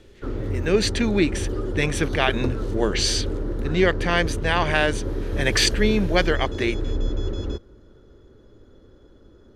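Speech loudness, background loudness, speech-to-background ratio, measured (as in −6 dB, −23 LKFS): −23.0 LKFS, −29.0 LKFS, 6.0 dB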